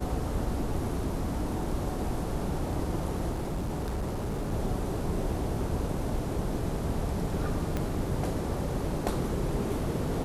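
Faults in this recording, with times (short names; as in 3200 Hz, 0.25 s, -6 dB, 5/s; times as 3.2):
3.31–4.53 clipped -28 dBFS
7.77 pop -17 dBFS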